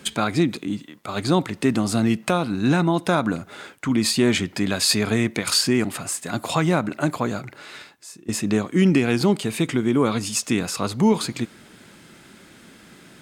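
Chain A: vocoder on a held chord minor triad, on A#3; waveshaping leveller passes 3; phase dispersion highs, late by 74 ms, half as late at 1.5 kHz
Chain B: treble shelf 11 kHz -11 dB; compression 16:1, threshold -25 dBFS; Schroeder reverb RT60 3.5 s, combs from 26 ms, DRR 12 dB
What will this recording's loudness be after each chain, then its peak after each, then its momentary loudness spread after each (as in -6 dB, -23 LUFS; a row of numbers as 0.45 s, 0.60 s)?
-16.0 LUFS, -30.5 LUFS; -2.0 dBFS, -12.0 dBFS; 9 LU, 15 LU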